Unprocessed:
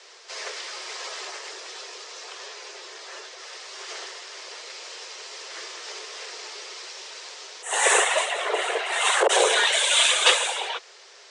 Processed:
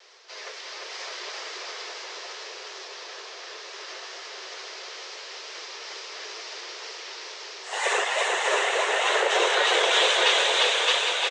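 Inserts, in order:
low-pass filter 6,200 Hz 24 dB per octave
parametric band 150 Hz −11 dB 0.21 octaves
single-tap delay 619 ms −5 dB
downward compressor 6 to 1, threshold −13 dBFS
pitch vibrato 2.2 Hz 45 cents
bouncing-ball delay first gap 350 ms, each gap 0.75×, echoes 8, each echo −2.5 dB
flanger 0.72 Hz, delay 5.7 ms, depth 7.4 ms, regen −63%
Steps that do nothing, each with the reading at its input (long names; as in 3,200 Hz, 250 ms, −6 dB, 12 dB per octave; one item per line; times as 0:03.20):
parametric band 150 Hz: nothing at its input below 300 Hz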